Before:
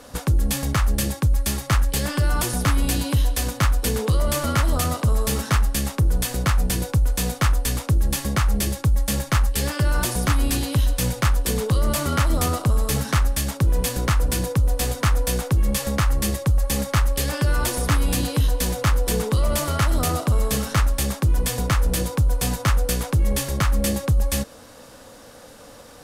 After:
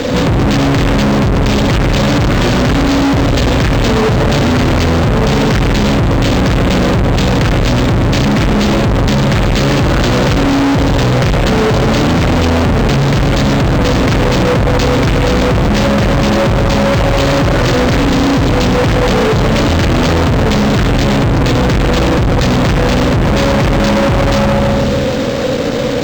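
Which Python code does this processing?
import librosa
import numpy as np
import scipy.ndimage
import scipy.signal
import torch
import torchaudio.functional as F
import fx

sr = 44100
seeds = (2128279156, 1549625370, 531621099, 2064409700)

y = fx.graphic_eq(x, sr, hz=(125, 250, 500, 1000, 2000, 4000, 8000), db=(11, 9, 10, -9, 4, 9, -6))
y = fx.rev_spring(y, sr, rt60_s=1.5, pass_ms=(36, 48), chirp_ms=70, drr_db=2.0)
y = fx.fuzz(y, sr, gain_db=36.0, gate_db=-40.0)
y = np.interp(np.arange(len(y)), np.arange(len(y))[::4], y[::4])
y = y * 10.0 ** (3.5 / 20.0)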